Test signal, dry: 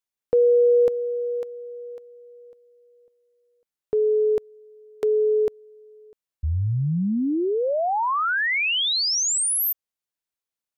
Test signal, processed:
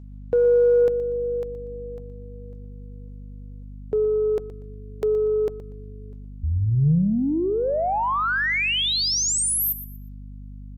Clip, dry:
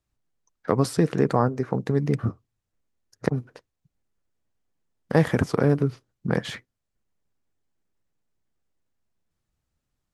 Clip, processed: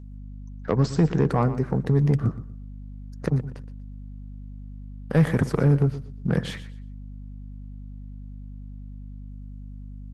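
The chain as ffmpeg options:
ffmpeg -i in.wav -af "adynamicequalizer=threshold=0.0141:dfrequency=150:dqfactor=2.3:tfrequency=150:tqfactor=2.3:attack=5:release=100:ratio=0.45:range=3.5:mode=boostabove:tftype=bell,aeval=exprs='val(0)+0.0112*(sin(2*PI*50*n/s)+sin(2*PI*2*50*n/s)/2+sin(2*PI*3*50*n/s)/3+sin(2*PI*4*50*n/s)/4+sin(2*PI*5*50*n/s)/5)':channel_layout=same,asoftclip=type=tanh:threshold=-10.5dB,aecho=1:1:120|240|360:0.2|0.0479|0.0115" -ar 48000 -c:a libopus -b:a 24k out.opus

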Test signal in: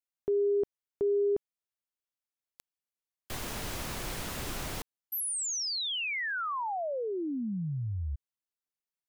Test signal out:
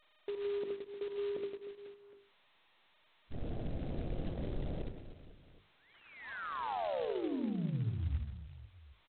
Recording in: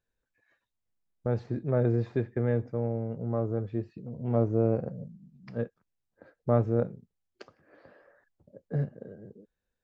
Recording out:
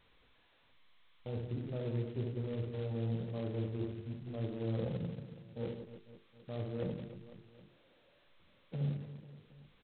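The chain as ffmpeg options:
ffmpeg -i in.wav -af "aeval=exprs='val(0)+0.5*0.0158*sgn(val(0))':channel_layout=same,agate=range=-12dB:threshold=-36dB:ratio=16:release=99:detection=peak,afwtdn=0.0224,lowpass=frequency=1900:width=0.5412,lowpass=frequency=1900:width=1.3066,bandreject=frequency=50:width_type=h:width=6,bandreject=frequency=100:width_type=h:width=6,bandreject=frequency=150:width_type=h:width=6,bandreject=frequency=200:width_type=h:width=6,bandreject=frequency=250:width_type=h:width=6,bandreject=frequency=300:width_type=h:width=6,bandreject=frequency=350:width_type=h:width=6,bandreject=frequency=400:width_type=h:width=6,bandreject=frequency=450:width_type=h:width=6,areverse,acompressor=threshold=-36dB:ratio=12:attack=10:release=368:knee=6:detection=rms,areverse,acrusher=bits=6:mode=log:mix=0:aa=0.000001,aecho=1:1:70|168|305.2|497.3|766.2:0.631|0.398|0.251|0.158|0.1,adynamicsmooth=sensitivity=1:basefreq=780,volume=2dB" -ar 8000 -c:a adpcm_g726 -b:a 16k out.wav

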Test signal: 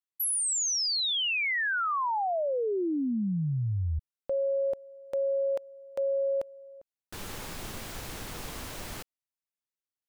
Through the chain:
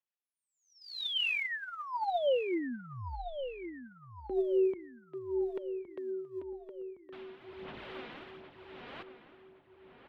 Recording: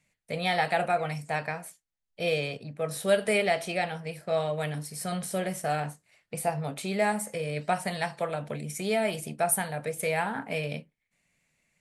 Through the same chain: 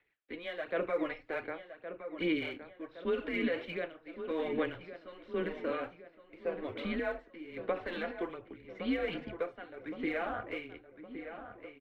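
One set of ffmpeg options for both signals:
ffmpeg -i in.wav -filter_complex "[0:a]tremolo=f=0.88:d=0.78,alimiter=limit=-24dB:level=0:latency=1:release=46,highpass=frequency=320:width_type=q:width=0.5412,highpass=frequency=320:width_type=q:width=1.307,lowpass=frequency=3600:width_type=q:width=0.5176,lowpass=frequency=3600:width_type=q:width=0.7071,lowpass=frequency=3600:width_type=q:width=1.932,afreqshift=-170,aphaser=in_gain=1:out_gain=1:delay=4.2:decay=0.46:speed=1.3:type=sinusoidal,asplit=2[link_01][link_02];[link_02]adelay=1115,lowpass=frequency=2600:poles=1,volume=-10dB,asplit=2[link_03][link_04];[link_04]adelay=1115,lowpass=frequency=2600:poles=1,volume=0.53,asplit=2[link_05][link_06];[link_06]adelay=1115,lowpass=frequency=2600:poles=1,volume=0.53,asplit=2[link_07][link_08];[link_08]adelay=1115,lowpass=frequency=2600:poles=1,volume=0.53,asplit=2[link_09][link_10];[link_10]adelay=1115,lowpass=frequency=2600:poles=1,volume=0.53,asplit=2[link_11][link_12];[link_12]adelay=1115,lowpass=frequency=2600:poles=1,volume=0.53[link_13];[link_03][link_05][link_07][link_09][link_11][link_13]amix=inputs=6:normalize=0[link_14];[link_01][link_14]amix=inputs=2:normalize=0,volume=-2.5dB" out.wav

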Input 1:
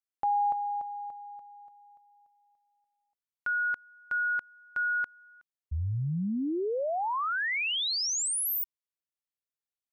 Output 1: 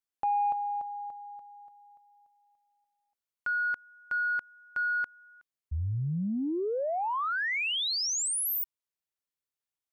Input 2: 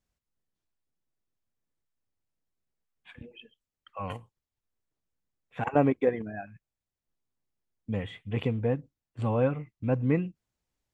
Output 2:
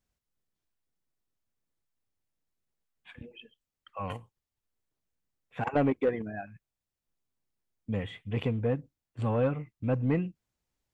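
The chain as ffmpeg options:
ffmpeg -i in.wav -af "asoftclip=type=tanh:threshold=-18dB" out.wav

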